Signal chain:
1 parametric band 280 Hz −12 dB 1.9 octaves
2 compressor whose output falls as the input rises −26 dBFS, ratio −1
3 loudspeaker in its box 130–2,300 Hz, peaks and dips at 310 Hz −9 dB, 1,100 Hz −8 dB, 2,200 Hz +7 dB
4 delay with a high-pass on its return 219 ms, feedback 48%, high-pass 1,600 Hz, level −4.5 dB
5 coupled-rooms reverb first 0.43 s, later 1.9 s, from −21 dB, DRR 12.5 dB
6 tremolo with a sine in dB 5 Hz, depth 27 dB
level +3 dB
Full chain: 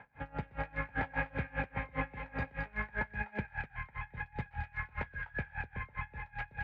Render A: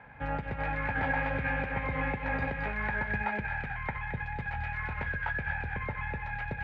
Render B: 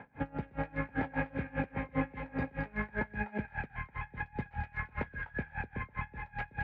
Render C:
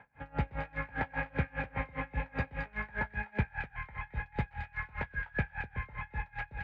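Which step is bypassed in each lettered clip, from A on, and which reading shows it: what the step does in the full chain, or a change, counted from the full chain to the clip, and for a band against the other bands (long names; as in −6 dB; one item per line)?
6, change in crest factor −3.5 dB
1, 250 Hz band +6.0 dB
2, 125 Hz band +2.5 dB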